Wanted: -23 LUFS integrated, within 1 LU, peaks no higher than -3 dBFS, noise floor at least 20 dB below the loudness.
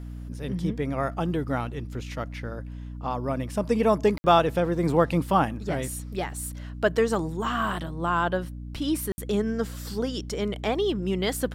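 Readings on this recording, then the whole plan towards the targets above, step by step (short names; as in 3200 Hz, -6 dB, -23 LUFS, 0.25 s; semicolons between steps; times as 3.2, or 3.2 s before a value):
dropouts 2; longest dropout 60 ms; hum 60 Hz; harmonics up to 300 Hz; hum level -34 dBFS; loudness -27.0 LUFS; peak -7.5 dBFS; loudness target -23.0 LUFS
-> interpolate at 4.18/9.12, 60 ms; de-hum 60 Hz, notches 5; gain +4 dB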